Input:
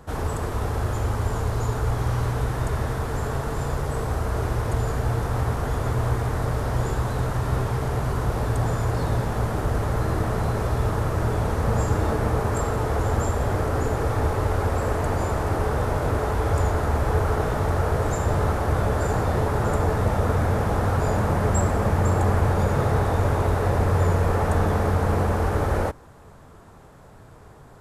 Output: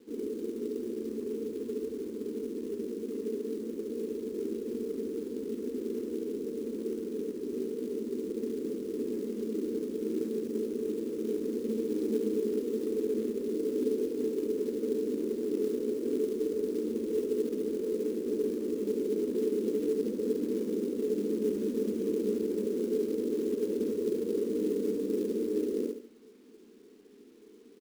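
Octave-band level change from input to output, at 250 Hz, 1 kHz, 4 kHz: -2.0 dB, under -35 dB, -13.5 dB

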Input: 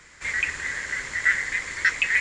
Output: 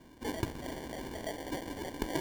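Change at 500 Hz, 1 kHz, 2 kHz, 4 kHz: +8.0, -3.0, -25.0, -10.0 dB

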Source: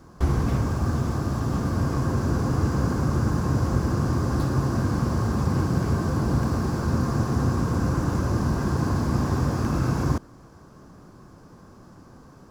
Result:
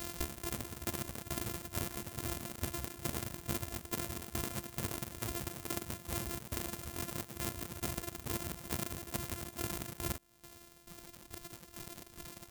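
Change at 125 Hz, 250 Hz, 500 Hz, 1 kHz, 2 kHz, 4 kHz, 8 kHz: -22.0, -19.0, -15.0, -15.5, -10.0, -3.0, -0.5 dB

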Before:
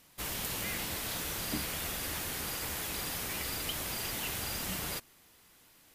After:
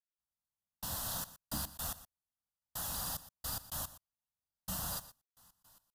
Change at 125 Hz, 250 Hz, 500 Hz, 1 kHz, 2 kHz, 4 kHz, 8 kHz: -5.0, -8.5, -10.5, -5.0, -14.5, -9.0, -5.5 dB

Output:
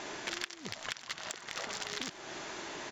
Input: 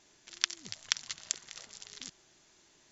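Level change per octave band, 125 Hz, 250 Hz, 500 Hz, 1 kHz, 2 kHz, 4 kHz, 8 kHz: +7.5 dB, +12.5 dB, +17.0 dB, +9.5 dB, +3.0 dB, -2.5 dB, n/a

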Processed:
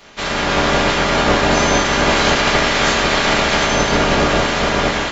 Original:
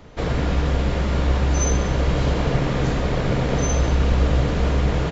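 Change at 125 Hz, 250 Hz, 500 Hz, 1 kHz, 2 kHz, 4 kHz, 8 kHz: -4.5 dB, +4.5 dB, +8.0 dB, +13.0 dB, +15.5 dB, +16.0 dB, n/a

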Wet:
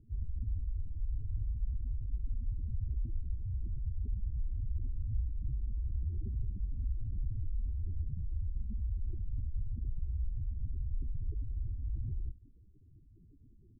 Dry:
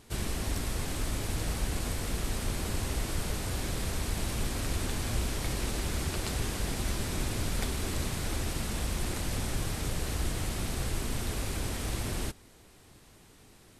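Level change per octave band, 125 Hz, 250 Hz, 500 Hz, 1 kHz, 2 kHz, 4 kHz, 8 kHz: -3.0 dB, -17.5 dB, -29.0 dB, under -40 dB, under -40 dB, under -40 dB, under -40 dB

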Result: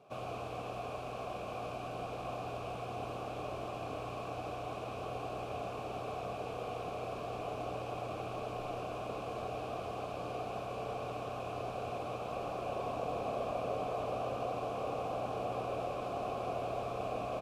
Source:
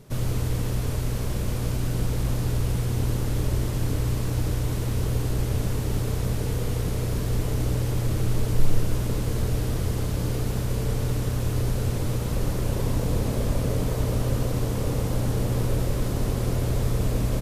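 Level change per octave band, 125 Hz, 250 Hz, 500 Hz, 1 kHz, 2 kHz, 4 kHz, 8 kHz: -23.5, -16.0, -5.0, +1.5, -8.0, -12.0, -22.0 dB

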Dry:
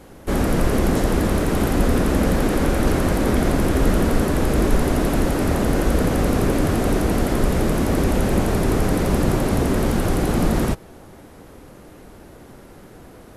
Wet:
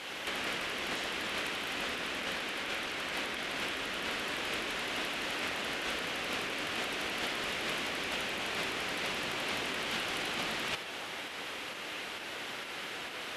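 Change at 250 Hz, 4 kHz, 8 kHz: -24.5, +0.5, -11.5 dB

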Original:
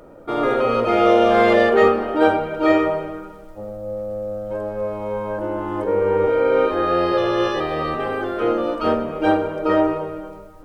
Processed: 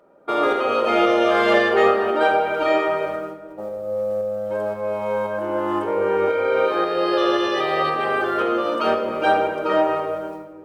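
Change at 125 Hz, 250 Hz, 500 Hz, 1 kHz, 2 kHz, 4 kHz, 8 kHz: -7.5 dB, -4.0 dB, -1.5 dB, +0.5 dB, +2.0 dB, +3.0 dB, n/a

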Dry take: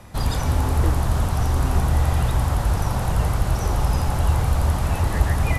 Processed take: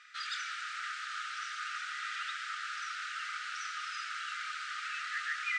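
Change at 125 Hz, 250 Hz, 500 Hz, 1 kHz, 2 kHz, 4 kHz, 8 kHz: under -40 dB, under -40 dB, under -40 dB, -11.0 dB, -1.5 dB, -4.0 dB, -13.0 dB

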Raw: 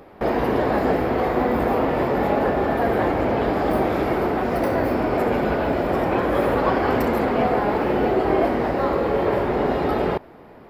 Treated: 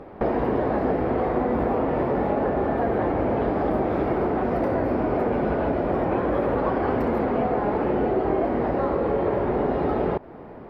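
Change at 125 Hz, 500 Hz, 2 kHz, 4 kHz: -1.5 dB, -2.5 dB, -7.0 dB, under -10 dB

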